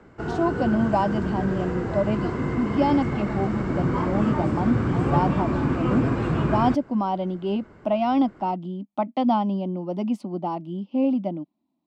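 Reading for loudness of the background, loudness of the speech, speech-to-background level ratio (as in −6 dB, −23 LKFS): −26.0 LKFS, −26.0 LKFS, 0.0 dB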